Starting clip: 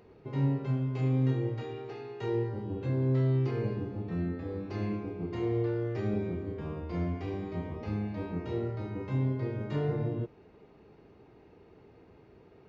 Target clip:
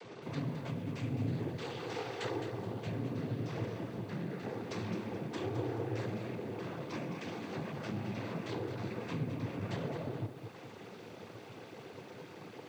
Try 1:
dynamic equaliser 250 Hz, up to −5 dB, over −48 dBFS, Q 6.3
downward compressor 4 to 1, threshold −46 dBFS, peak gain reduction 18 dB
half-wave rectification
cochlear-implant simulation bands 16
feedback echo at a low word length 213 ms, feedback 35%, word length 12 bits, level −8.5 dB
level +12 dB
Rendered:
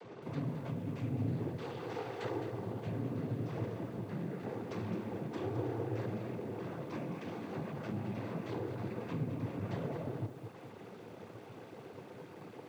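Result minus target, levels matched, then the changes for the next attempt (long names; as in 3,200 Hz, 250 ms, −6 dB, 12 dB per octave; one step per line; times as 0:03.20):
4,000 Hz band −7.0 dB
add after downward compressor: high-shelf EQ 2,200 Hz +11.5 dB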